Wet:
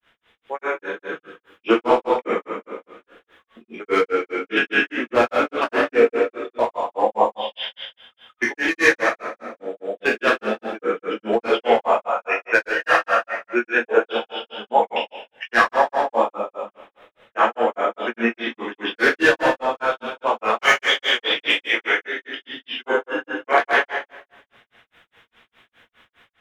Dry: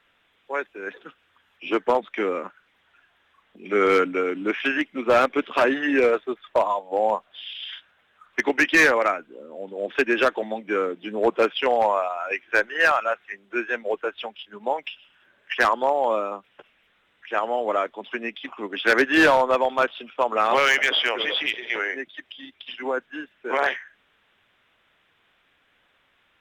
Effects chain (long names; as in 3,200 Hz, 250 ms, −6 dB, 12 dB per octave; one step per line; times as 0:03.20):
dense smooth reverb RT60 1.2 s, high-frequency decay 0.95×, DRR −5.5 dB
automatic gain control gain up to 6 dB
granular cloud 182 ms, grains 4.9 per second, pitch spread up and down by 0 semitones